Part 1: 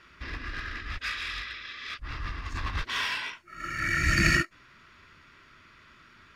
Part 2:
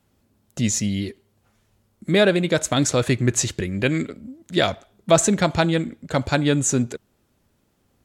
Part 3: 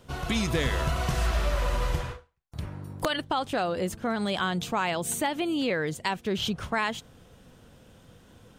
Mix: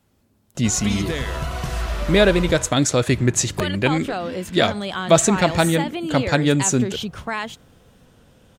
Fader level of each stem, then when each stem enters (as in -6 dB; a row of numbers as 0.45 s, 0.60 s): -15.5 dB, +1.5 dB, +1.0 dB; 1.30 s, 0.00 s, 0.55 s